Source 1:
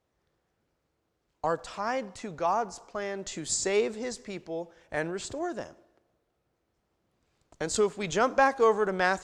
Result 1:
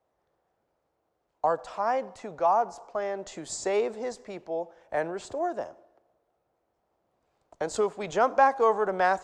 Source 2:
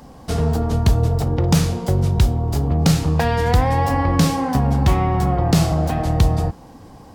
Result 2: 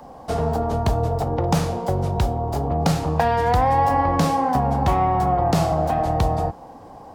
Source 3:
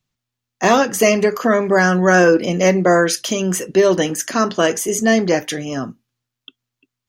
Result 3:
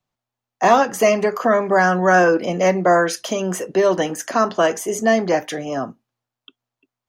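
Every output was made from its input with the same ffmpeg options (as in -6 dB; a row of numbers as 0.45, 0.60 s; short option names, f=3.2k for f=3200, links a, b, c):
-filter_complex "[0:a]equalizer=f=720:w=0.76:g=14,acrossover=split=370|740|3200[a][b][c][d];[b]acompressor=threshold=-21dB:ratio=6[e];[a][e][c][d]amix=inputs=4:normalize=0,volume=-7dB"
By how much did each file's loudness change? +1.0, -2.5, -2.0 LU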